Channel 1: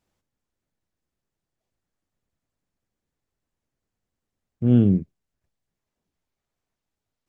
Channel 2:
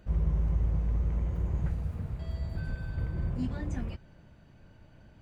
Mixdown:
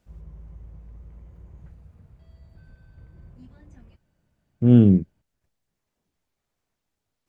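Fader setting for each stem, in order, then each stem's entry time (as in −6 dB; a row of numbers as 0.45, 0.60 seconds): +3.0, −15.5 decibels; 0.00, 0.00 seconds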